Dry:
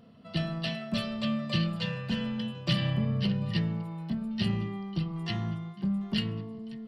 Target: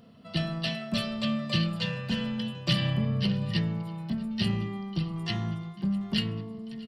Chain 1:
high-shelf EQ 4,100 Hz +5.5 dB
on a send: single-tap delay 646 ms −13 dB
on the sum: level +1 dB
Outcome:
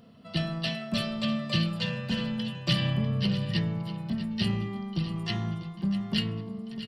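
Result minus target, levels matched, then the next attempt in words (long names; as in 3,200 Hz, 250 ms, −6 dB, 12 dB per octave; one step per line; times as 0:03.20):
echo-to-direct +10.5 dB
high-shelf EQ 4,100 Hz +5.5 dB
on a send: single-tap delay 646 ms −23.5 dB
on the sum: level +1 dB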